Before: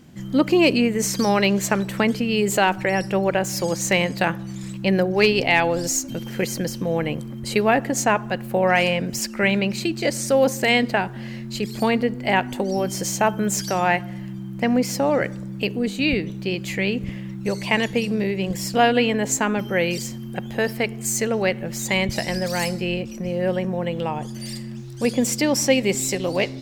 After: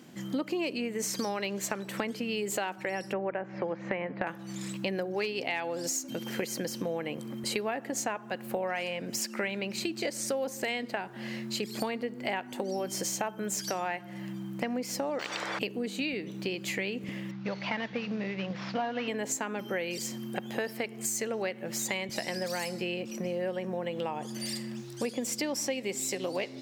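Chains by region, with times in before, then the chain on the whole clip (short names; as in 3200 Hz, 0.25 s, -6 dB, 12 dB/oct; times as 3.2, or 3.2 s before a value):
3.13–4.27 LPF 2100 Hz 24 dB/oct + three-band squash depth 40%
15.19–15.59 careless resampling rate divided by 2×, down filtered, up zero stuff + LPF 3800 Hz + spectral compressor 10:1
17.31–19.08 CVSD 32 kbps + Bessel low-pass 2800 Hz + bell 380 Hz -10.5 dB 0.7 oct
whole clip: HPF 240 Hz 12 dB/oct; compressor 6:1, threshold -30 dBFS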